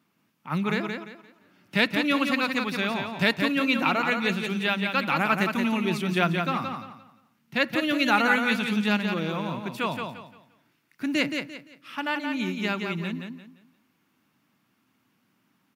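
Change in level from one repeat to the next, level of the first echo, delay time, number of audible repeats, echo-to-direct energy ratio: -11.0 dB, -5.5 dB, 0.173 s, 3, -5.0 dB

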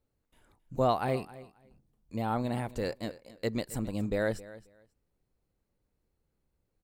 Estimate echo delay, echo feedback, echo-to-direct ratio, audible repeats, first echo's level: 0.268 s, 18%, -18.0 dB, 2, -18.0 dB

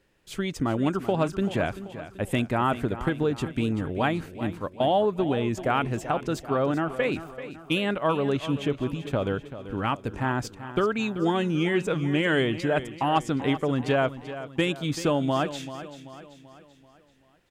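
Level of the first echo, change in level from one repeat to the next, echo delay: -13.0 dB, -6.5 dB, 0.386 s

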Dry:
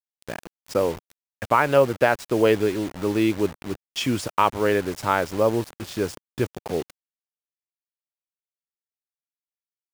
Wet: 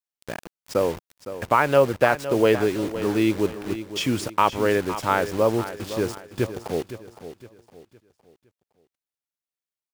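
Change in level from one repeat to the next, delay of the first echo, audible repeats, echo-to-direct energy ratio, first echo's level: -8.5 dB, 0.512 s, 3, -12.0 dB, -12.5 dB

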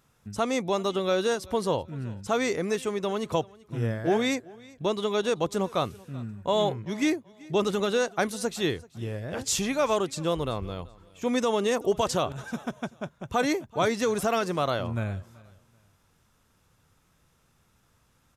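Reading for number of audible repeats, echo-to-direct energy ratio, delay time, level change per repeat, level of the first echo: 2, -22.5 dB, 0.384 s, -11.5 dB, -23.0 dB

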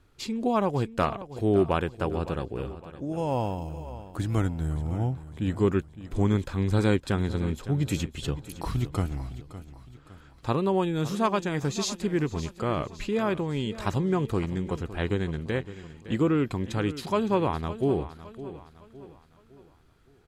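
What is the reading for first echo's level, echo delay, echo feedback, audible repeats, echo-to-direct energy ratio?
-14.5 dB, 0.561 s, 42%, 3, -13.5 dB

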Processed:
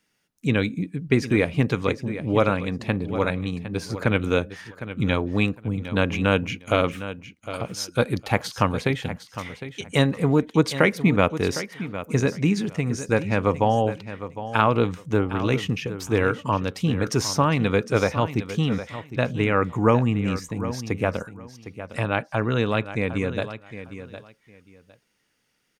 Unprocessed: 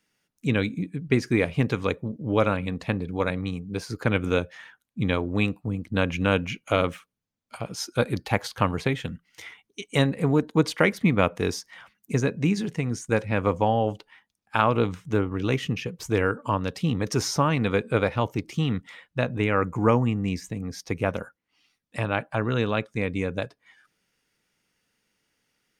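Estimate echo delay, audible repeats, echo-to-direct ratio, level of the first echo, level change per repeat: 0.758 s, 2, -12.5 dB, -12.5 dB, -14.0 dB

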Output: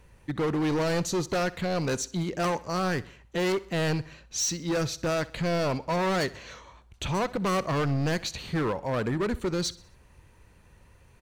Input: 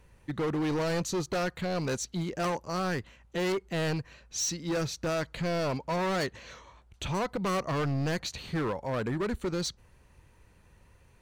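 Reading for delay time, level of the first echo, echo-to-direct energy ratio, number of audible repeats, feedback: 64 ms, -20.0 dB, -19.0 dB, 3, 48%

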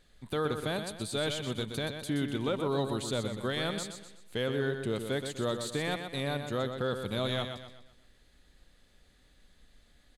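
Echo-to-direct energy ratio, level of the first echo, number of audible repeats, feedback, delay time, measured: -6.5 dB, -7.5 dB, 4, 40%, 0.124 s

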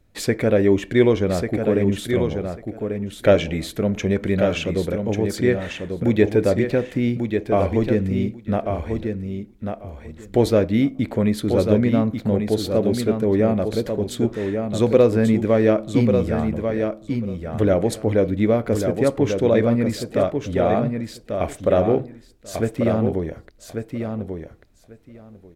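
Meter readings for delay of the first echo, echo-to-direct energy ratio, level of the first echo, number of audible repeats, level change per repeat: 1.142 s, -6.0 dB, -6.0 dB, 2, -16.5 dB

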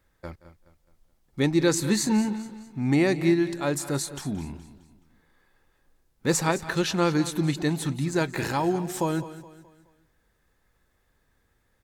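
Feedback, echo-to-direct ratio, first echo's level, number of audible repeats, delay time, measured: no steady repeat, -13.0 dB, -19.0 dB, 5, 0.175 s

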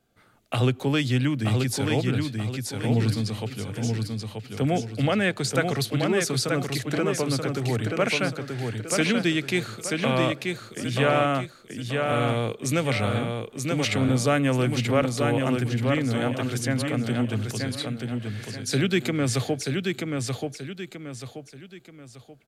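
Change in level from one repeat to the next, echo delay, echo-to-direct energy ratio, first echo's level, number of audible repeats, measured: -8.5 dB, 0.932 s, -3.5 dB, -4.0 dB, 3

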